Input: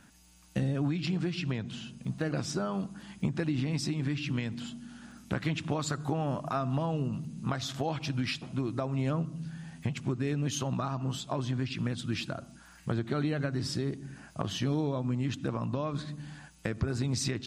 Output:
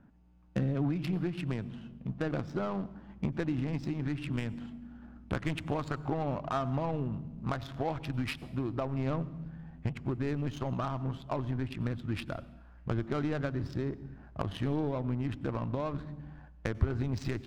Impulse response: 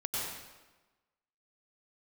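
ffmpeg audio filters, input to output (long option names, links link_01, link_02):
-filter_complex "[0:a]adynamicsmooth=sensitivity=4.5:basefreq=830,asubboost=boost=7:cutoff=54,asplit=2[link_01][link_02];[1:a]atrim=start_sample=2205,highshelf=frequency=6000:gain=7.5[link_03];[link_02][link_03]afir=irnorm=-1:irlink=0,volume=-24dB[link_04];[link_01][link_04]amix=inputs=2:normalize=0"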